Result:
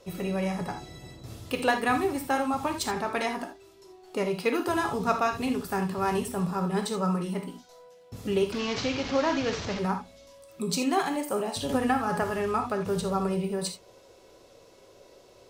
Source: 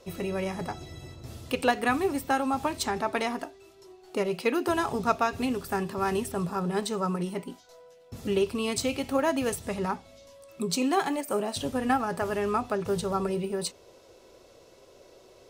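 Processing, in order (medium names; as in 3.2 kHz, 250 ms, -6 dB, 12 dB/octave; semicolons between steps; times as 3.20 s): 8.52–9.79 s: one-bit delta coder 32 kbps, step -28.5 dBFS; reverberation, pre-delay 3 ms, DRR 4.5 dB; 11.69–12.24 s: three bands compressed up and down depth 100%; trim -1 dB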